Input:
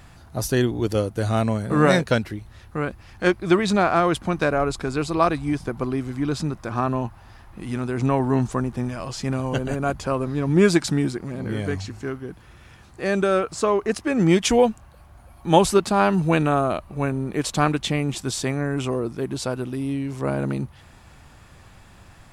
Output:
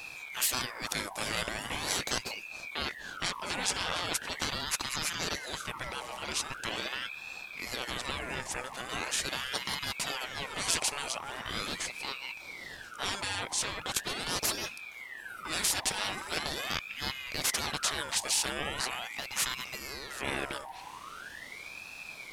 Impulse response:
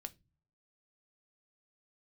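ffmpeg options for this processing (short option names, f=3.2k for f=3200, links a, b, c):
-af "equalizer=f=390:t=o:w=1.7:g=-14.5,afftfilt=real='re*lt(hypot(re,im),0.0708)':imag='im*lt(hypot(re,im),0.0708)':win_size=1024:overlap=0.75,aeval=exprs='val(0)*sin(2*PI*1700*n/s+1700*0.5/0.41*sin(2*PI*0.41*n/s))':c=same,volume=7.5dB"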